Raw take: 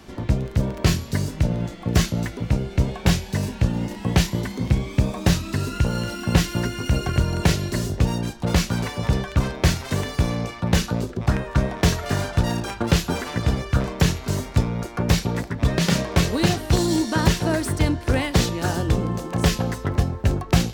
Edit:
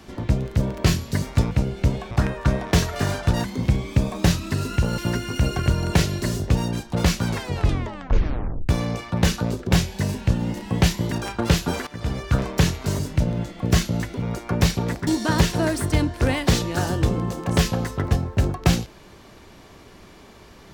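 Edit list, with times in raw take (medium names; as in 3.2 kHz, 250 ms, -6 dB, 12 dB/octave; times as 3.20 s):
1.22–2.45 s: swap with 14.41–14.70 s
3.05–4.46 s: swap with 11.21–12.54 s
6.00–6.48 s: delete
8.77 s: tape stop 1.42 s
13.29–13.71 s: fade in linear, from -17 dB
15.55–16.94 s: delete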